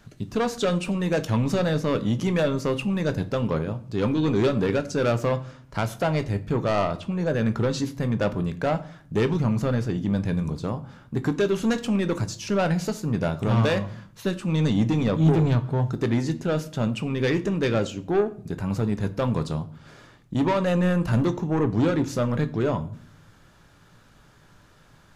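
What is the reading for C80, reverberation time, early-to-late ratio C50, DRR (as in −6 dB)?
20.5 dB, 0.50 s, 17.0 dB, 9.5 dB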